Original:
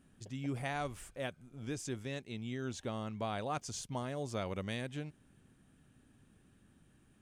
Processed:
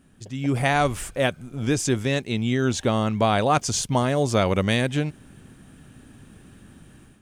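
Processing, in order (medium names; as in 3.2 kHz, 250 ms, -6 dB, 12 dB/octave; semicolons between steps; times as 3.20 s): level rider gain up to 9.5 dB; trim +8 dB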